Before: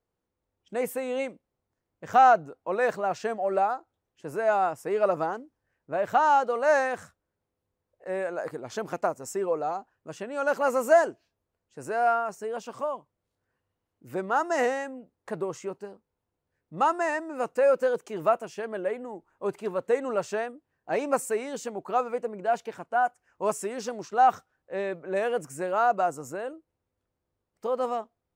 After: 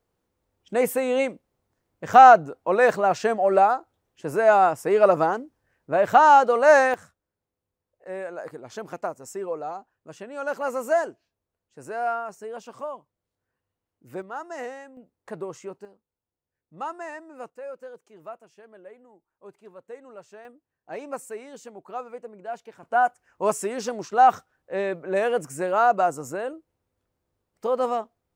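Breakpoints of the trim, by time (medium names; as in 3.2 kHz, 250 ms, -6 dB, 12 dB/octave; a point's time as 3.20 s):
+7 dB
from 6.94 s -3 dB
from 14.22 s -9.5 dB
from 14.97 s -2.5 dB
from 15.85 s -9 dB
from 17.50 s -16 dB
from 20.45 s -8 dB
from 22.83 s +4 dB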